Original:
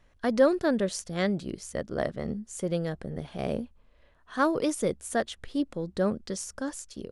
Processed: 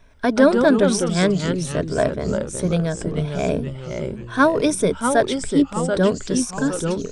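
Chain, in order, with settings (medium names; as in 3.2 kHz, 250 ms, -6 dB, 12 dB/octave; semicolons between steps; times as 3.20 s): rippled EQ curve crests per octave 1.6, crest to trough 10 dB; ever faster or slower copies 104 ms, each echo -2 st, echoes 3, each echo -6 dB; trim +8 dB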